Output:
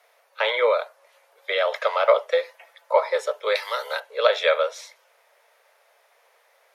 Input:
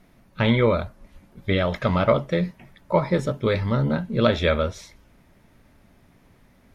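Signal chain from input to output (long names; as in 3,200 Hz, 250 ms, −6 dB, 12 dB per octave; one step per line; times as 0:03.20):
0:02.32–0:02.94: comb filter 5.9 ms, depth 54%
0:03.55–0:04.00: spectral tilt +4.5 dB per octave
Butterworth high-pass 460 Hz 72 dB per octave
level +2.5 dB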